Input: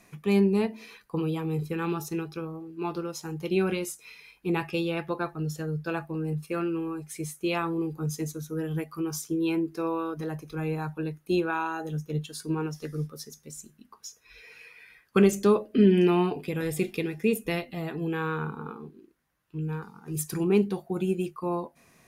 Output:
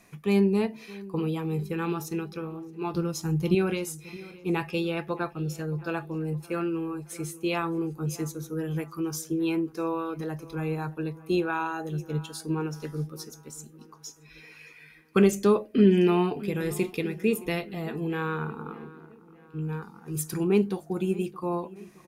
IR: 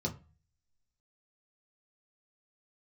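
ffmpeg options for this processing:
-filter_complex "[0:a]asettb=1/sr,asplit=3[link_01][link_02][link_03];[link_01]atrim=end=2.944[link_04];[link_02]atrim=start=2.94:end=3.55,asetpts=PTS-STARTPTS,afade=type=in:duration=0.004:curve=qsin,afade=type=out:start_time=0.606:duration=0.004:curve=qsin,bass=frequency=250:gain=13,treble=frequency=4000:gain=4[link_05];[link_03]atrim=start=3.546[link_06];[link_04][link_05]acrossfade=duration=0.004:curve1=hsin:curve2=qsin[link_07];[link_07][link_06]acrossfade=duration=0.004:curve1=qsin:curve2=hsin,asplit=2[link_08][link_09];[link_09]adelay=618,lowpass=frequency=2700:poles=1,volume=-19dB,asplit=2[link_10][link_11];[link_11]adelay=618,lowpass=frequency=2700:poles=1,volume=0.52,asplit=2[link_12][link_13];[link_13]adelay=618,lowpass=frequency=2700:poles=1,volume=0.52,asplit=2[link_14][link_15];[link_15]adelay=618,lowpass=frequency=2700:poles=1,volume=0.52[link_16];[link_08][link_10][link_12][link_14][link_16]amix=inputs=5:normalize=0"

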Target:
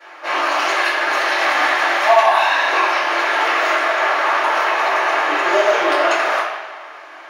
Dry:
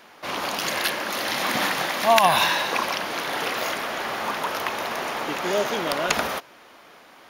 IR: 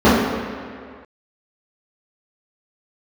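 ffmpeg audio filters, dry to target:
-filter_complex "[0:a]highpass=1100,acompressor=threshold=-26dB:ratio=6[link_01];[1:a]atrim=start_sample=2205,asetrate=66150,aresample=44100[link_02];[link_01][link_02]afir=irnorm=-1:irlink=0,volume=-12dB"

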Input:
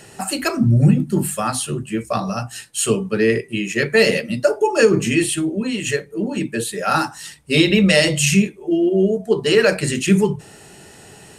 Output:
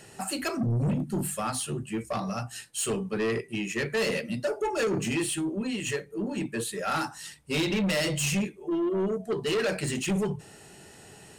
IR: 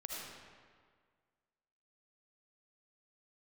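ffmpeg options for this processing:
-af "asoftclip=type=tanh:threshold=-16dB,volume=-7dB"

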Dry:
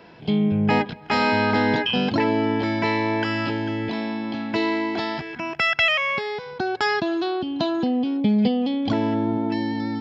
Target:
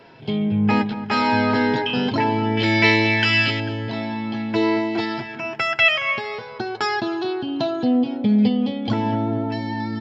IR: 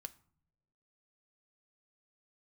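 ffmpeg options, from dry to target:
-filter_complex "[0:a]asettb=1/sr,asplit=3[link_01][link_02][link_03];[link_01]atrim=end=2.574[link_04];[link_02]atrim=start=2.57:end=3.6,asetpts=PTS-STARTPTS,afade=type=in:duration=0.004:curve=qsin,afade=type=out:start_time=1.026:duration=0.004:curve=qsin,highshelf=frequency=1600:width_type=q:width=1.5:gain=10[link_05];[link_03]atrim=start=3.596[link_06];[link_04][link_05]acrossfade=duration=0.004:curve1=hsin:curve2=qsin[link_07];[link_07][link_06]acrossfade=duration=0.004:curve1=qsin:curve2=hsin,flanger=delay=7.4:depth=1.6:regen=33:speed=0.53:shape=sinusoidal,asplit=2[link_08][link_09];[link_09]adelay=226,lowpass=frequency=1500:poles=1,volume=-12dB,asplit=2[link_10][link_11];[link_11]adelay=226,lowpass=frequency=1500:poles=1,volume=0.53,asplit=2[link_12][link_13];[link_13]adelay=226,lowpass=frequency=1500:poles=1,volume=0.53,asplit=2[link_14][link_15];[link_15]adelay=226,lowpass=frequency=1500:poles=1,volume=0.53,asplit=2[link_16][link_17];[link_17]adelay=226,lowpass=frequency=1500:poles=1,volume=0.53,asplit=2[link_18][link_19];[link_19]adelay=226,lowpass=frequency=1500:poles=1,volume=0.53[link_20];[link_08][link_10][link_12][link_14][link_16][link_18][link_20]amix=inputs=7:normalize=0,asplit=2[link_21][link_22];[1:a]atrim=start_sample=2205,asetrate=39249,aresample=44100[link_23];[link_22][link_23]afir=irnorm=-1:irlink=0,volume=8.5dB[link_24];[link_21][link_24]amix=inputs=2:normalize=0,volume=-4dB"

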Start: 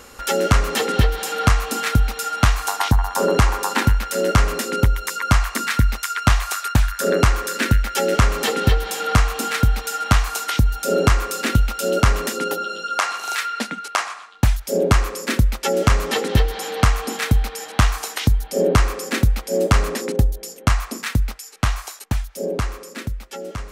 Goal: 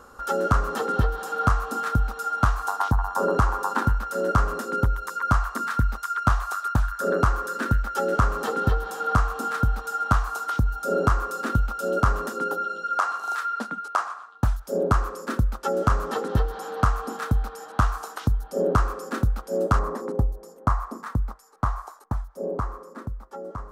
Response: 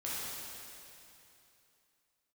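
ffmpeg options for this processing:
-af "asetnsamples=nb_out_samples=441:pad=0,asendcmd='19.79 highshelf g -14',highshelf=frequency=1700:width_type=q:width=3:gain=-8,volume=-6dB"

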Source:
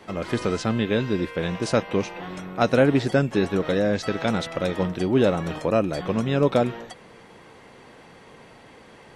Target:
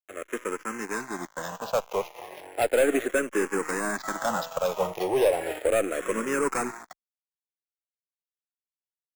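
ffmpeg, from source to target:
ffmpeg -i in.wav -filter_complex "[0:a]lowshelf=frequency=67:gain=-9.5,aeval=exprs='0.562*(cos(1*acos(clip(val(0)/0.562,-1,1)))-cos(1*PI/2))+0.0562*(cos(4*acos(clip(val(0)/0.562,-1,1)))-cos(4*PI/2))+0.00355*(cos(7*acos(clip(val(0)/0.562,-1,1)))-cos(7*PI/2))+0.00891*(cos(8*acos(clip(val(0)/0.562,-1,1)))-cos(8*PI/2))':channel_layout=same,dynaudnorm=framelen=300:gausssize=11:maxgain=9.5dB,asplit=2[link_01][link_02];[link_02]alimiter=limit=-9dB:level=0:latency=1:release=228,volume=-1dB[link_03];[link_01][link_03]amix=inputs=2:normalize=0,aeval=exprs='sgn(val(0))*max(abs(val(0))-0.0531,0)':channel_layout=same,acrossover=split=360 2800:gain=0.141 1 0.224[link_04][link_05][link_06];[link_04][link_05][link_06]amix=inputs=3:normalize=0,acrusher=samples=5:mix=1:aa=0.000001,asoftclip=type=tanh:threshold=-13dB,asplit=2[link_07][link_08];[link_08]afreqshift=-0.35[link_09];[link_07][link_09]amix=inputs=2:normalize=1,volume=-1.5dB" out.wav

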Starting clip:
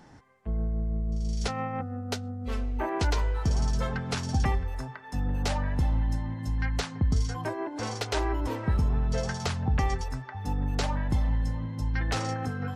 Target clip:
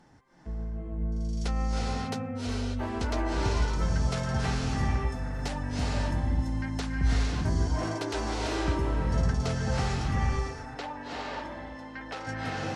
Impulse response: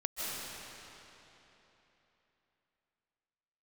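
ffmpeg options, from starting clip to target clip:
-filter_complex "[0:a]asettb=1/sr,asplit=3[link_01][link_02][link_03];[link_01]atrim=end=10.154[link_04];[link_02]atrim=start=10.15:end=12.27,asetpts=PTS-STARTPTS,afade=type=in:duration=0.004:curve=qsin,afade=type=out:start_time=2.116:duration=0.004:curve=qsin,acrossover=split=310 4300:gain=0.0891 1 0.2[link_05][link_06][link_07];[link_05][link_06][link_07]amix=inputs=3:normalize=0[link_08];[link_03]atrim=start=12.266[link_09];[link_04][link_08]acrossfade=duration=0.004:curve1=hsin:curve2=qsin[link_10];[link_10][link_09]acrossfade=duration=0.004:curve1=qsin:curve2=hsin[link_11];[1:a]atrim=start_sample=2205,afade=type=out:start_time=0.35:duration=0.01,atrim=end_sample=15876,asetrate=22050,aresample=44100[link_12];[link_11][link_12]afir=irnorm=-1:irlink=0,volume=-7.5dB"

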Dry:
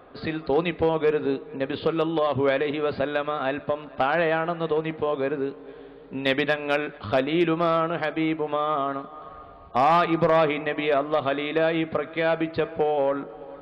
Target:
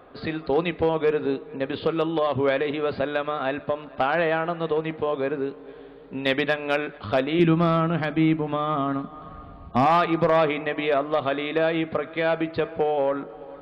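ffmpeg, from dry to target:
ffmpeg -i in.wav -filter_complex "[0:a]asettb=1/sr,asplit=3[link_01][link_02][link_03];[link_01]atrim=end=7.394[link_04];[link_02]atrim=start=7.39:end=9.86,asetpts=PTS-STARTPTS,afade=type=in:duration=0.004:curve=qsin,afade=type=out:start_time=2.466:duration=0.004:curve=qsin,lowshelf=frequency=320:width_type=q:width=1.5:gain=8.5[link_05];[link_03]atrim=start=9.856[link_06];[link_04][link_05]acrossfade=duration=0.004:curve1=hsin:curve2=qsin[link_07];[link_07][link_06]acrossfade=duration=0.004:curve1=qsin:curve2=hsin" out.wav

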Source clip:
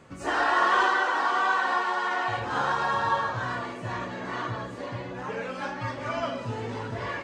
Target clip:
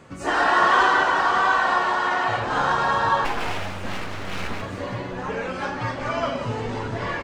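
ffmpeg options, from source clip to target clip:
ffmpeg -i in.wav -filter_complex "[0:a]asplit=3[link_01][link_02][link_03];[link_01]afade=type=out:start_time=3.24:duration=0.02[link_04];[link_02]aeval=exprs='abs(val(0))':channel_layout=same,afade=type=in:start_time=3.24:duration=0.02,afade=type=out:start_time=4.61:duration=0.02[link_05];[link_03]afade=type=in:start_time=4.61:duration=0.02[link_06];[link_04][link_05][link_06]amix=inputs=3:normalize=0,asplit=8[link_07][link_08][link_09][link_10][link_11][link_12][link_13][link_14];[link_08]adelay=178,afreqshift=-96,volume=-10dB[link_15];[link_09]adelay=356,afreqshift=-192,volume=-14.9dB[link_16];[link_10]adelay=534,afreqshift=-288,volume=-19.8dB[link_17];[link_11]adelay=712,afreqshift=-384,volume=-24.6dB[link_18];[link_12]adelay=890,afreqshift=-480,volume=-29.5dB[link_19];[link_13]adelay=1068,afreqshift=-576,volume=-34.4dB[link_20];[link_14]adelay=1246,afreqshift=-672,volume=-39.3dB[link_21];[link_07][link_15][link_16][link_17][link_18][link_19][link_20][link_21]amix=inputs=8:normalize=0,volume=4.5dB" out.wav

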